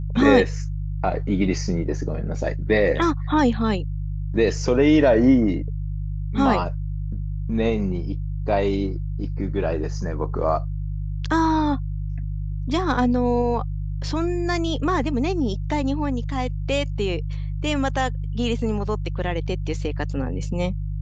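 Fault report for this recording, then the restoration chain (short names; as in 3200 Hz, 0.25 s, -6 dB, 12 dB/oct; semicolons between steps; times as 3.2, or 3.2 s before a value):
hum 50 Hz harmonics 3 -27 dBFS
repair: de-hum 50 Hz, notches 3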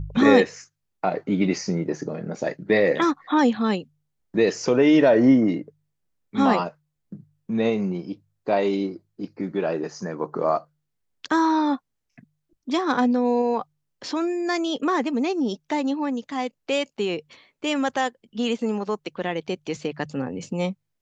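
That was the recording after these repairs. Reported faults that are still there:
none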